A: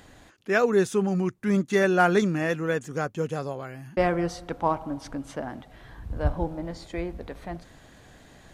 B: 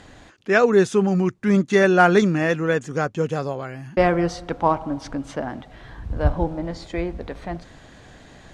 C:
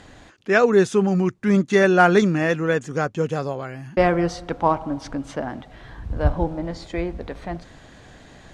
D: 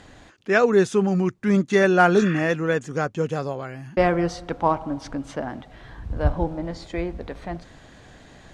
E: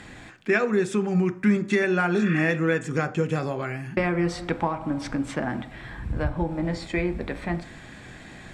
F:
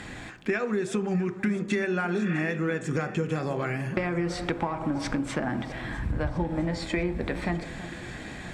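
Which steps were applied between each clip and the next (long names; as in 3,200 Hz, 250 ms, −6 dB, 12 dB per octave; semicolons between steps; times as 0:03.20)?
low-pass filter 7,300 Hz 12 dB per octave; level +5.5 dB
no processing that can be heard
healed spectral selection 0:02.18–0:02.39, 1,000–3,600 Hz; level −1.5 dB
downward compressor 6 to 1, threshold −24 dBFS, peak gain reduction 12.5 dB; convolution reverb RT60 0.50 s, pre-delay 3 ms, DRR 10.5 dB; level +4.5 dB
downward compressor, threshold −28 dBFS, peak gain reduction 12 dB; delay that swaps between a low-pass and a high-pass 327 ms, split 1,200 Hz, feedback 74%, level −14 dB; level +3.5 dB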